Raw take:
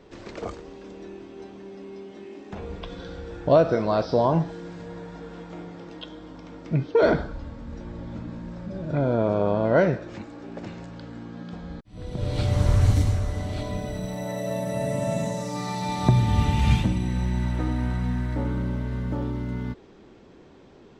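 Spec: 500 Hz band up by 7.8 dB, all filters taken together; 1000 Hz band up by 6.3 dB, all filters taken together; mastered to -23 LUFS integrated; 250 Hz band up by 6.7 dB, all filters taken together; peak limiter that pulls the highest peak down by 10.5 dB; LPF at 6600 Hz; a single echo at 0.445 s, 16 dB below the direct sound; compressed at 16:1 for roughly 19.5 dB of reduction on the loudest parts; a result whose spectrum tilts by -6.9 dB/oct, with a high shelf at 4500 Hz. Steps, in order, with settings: LPF 6600 Hz; bell 250 Hz +7 dB; bell 500 Hz +6.5 dB; bell 1000 Hz +5.5 dB; high shelf 4500 Hz -8 dB; compressor 16:1, threshold -26 dBFS; limiter -24 dBFS; echo 0.445 s -16 dB; gain +10.5 dB

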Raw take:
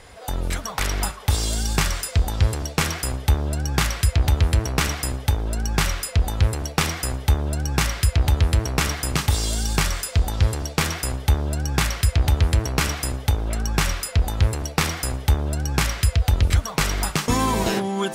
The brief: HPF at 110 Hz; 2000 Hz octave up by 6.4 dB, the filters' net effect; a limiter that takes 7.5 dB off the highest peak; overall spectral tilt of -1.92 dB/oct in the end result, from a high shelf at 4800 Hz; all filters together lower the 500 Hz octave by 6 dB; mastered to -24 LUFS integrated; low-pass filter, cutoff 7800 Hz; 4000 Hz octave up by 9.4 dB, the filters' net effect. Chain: HPF 110 Hz; LPF 7800 Hz; bell 500 Hz -8.5 dB; bell 2000 Hz +5 dB; bell 4000 Hz +7 dB; high shelf 4800 Hz +8 dB; gain -2 dB; limiter -8.5 dBFS

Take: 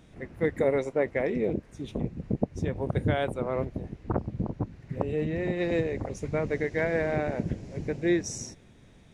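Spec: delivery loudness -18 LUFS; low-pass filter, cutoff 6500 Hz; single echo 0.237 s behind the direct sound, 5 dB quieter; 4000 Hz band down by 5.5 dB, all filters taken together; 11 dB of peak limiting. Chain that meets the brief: LPF 6500 Hz; bell 4000 Hz -6.5 dB; limiter -22 dBFS; echo 0.237 s -5 dB; gain +14 dB

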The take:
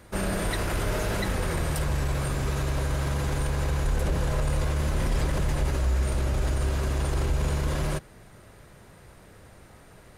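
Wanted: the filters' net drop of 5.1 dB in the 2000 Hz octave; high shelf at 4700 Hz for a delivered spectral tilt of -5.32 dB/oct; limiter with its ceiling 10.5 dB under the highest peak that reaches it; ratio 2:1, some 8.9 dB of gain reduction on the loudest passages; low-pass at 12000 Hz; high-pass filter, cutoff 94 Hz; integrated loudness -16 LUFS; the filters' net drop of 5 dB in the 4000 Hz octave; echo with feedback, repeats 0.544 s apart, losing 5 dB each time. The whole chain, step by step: HPF 94 Hz; LPF 12000 Hz; bell 2000 Hz -6 dB; bell 4000 Hz -8 dB; high shelf 4700 Hz +6.5 dB; compressor 2:1, threshold -43 dBFS; limiter -36.5 dBFS; feedback echo 0.544 s, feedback 56%, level -5 dB; gain +28.5 dB

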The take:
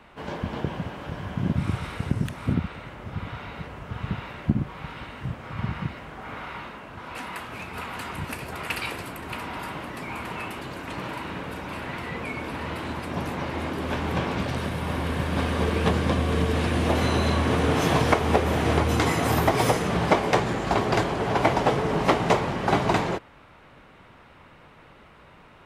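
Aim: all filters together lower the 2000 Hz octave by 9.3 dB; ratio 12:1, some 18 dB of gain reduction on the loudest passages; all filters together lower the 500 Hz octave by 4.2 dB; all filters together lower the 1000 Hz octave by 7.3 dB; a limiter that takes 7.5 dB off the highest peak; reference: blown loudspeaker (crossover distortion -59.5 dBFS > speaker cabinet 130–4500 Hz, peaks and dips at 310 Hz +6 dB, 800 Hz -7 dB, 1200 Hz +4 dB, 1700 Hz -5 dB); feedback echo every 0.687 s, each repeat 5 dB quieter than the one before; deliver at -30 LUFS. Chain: bell 500 Hz -4.5 dB; bell 1000 Hz -3.5 dB; bell 2000 Hz -8.5 dB; compressor 12:1, threshold -37 dBFS; limiter -33 dBFS; feedback echo 0.687 s, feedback 56%, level -5 dB; crossover distortion -59.5 dBFS; speaker cabinet 130–4500 Hz, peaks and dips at 310 Hz +6 dB, 800 Hz -7 dB, 1200 Hz +4 dB, 1700 Hz -5 dB; gain +13 dB

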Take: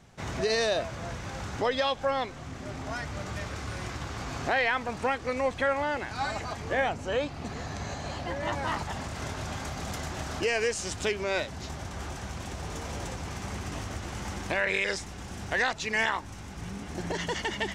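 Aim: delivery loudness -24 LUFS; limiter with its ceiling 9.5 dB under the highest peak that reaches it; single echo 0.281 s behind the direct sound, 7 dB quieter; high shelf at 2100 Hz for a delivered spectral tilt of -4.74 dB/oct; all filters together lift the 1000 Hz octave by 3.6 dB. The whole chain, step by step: bell 1000 Hz +5.5 dB; high shelf 2100 Hz -4 dB; limiter -22.5 dBFS; echo 0.281 s -7 dB; gain +9 dB

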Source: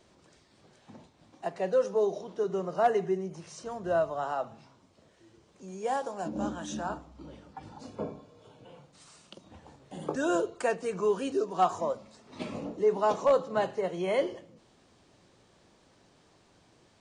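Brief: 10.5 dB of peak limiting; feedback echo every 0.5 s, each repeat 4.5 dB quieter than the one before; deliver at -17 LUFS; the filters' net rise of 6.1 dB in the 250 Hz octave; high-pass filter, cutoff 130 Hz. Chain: HPF 130 Hz; bell 250 Hz +9 dB; limiter -23.5 dBFS; feedback echo 0.5 s, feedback 60%, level -4.5 dB; gain +15.5 dB

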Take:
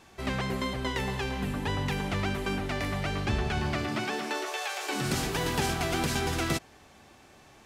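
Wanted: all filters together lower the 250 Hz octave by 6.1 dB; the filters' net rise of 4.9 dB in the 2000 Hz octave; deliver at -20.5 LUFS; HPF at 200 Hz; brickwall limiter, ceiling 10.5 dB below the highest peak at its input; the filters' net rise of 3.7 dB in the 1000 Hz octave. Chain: HPF 200 Hz; bell 250 Hz -6 dB; bell 1000 Hz +4 dB; bell 2000 Hz +5 dB; gain +13 dB; limiter -12 dBFS

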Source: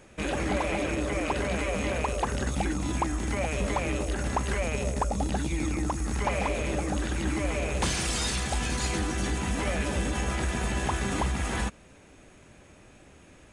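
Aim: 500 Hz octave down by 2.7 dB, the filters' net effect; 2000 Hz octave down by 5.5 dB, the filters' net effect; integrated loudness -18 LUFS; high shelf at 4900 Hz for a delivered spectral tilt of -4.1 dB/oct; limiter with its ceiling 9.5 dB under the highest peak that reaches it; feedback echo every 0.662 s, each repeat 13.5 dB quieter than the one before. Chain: bell 500 Hz -3 dB; bell 2000 Hz -8 dB; high shelf 4900 Hz +6.5 dB; limiter -26.5 dBFS; feedback echo 0.662 s, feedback 21%, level -13.5 dB; gain +17 dB

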